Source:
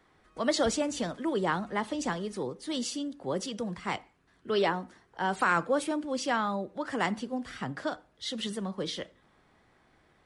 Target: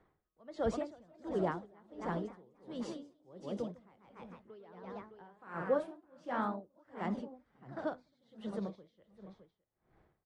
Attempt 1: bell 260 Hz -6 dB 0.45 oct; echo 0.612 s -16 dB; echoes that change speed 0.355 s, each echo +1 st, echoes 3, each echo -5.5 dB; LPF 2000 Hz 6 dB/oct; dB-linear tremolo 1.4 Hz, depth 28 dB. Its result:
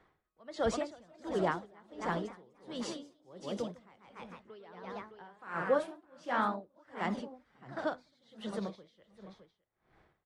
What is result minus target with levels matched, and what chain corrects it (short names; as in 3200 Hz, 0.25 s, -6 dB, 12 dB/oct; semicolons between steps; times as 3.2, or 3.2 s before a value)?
2000 Hz band +4.5 dB
bell 260 Hz -6 dB 0.45 oct; echo 0.612 s -16 dB; echoes that change speed 0.355 s, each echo +1 st, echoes 3, each echo -5.5 dB; LPF 590 Hz 6 dB/oct; dB-linear tremolo 1.4 Hz, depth 28 dB